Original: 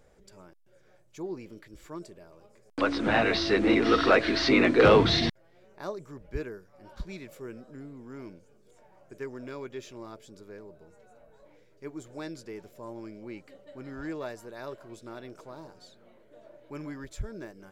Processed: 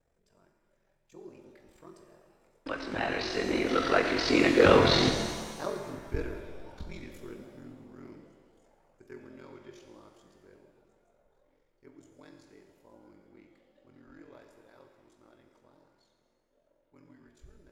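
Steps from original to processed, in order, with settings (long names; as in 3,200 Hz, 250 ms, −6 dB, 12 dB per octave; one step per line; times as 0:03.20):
source passing by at 0:05.63, 15 m/s, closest 15 metres
ring modulation 22 Hz
reverb with rising layers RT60 1.5 s, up +7 semitones, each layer −8 dB, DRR 4 dB
level +3.5 dB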